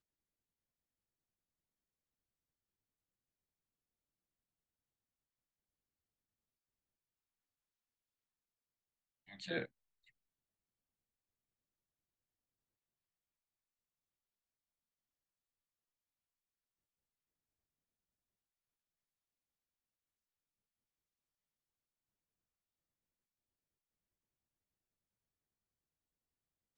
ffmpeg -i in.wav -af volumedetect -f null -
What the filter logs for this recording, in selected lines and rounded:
mean_volume: -60.6 dB
max_volume: -25.2 dB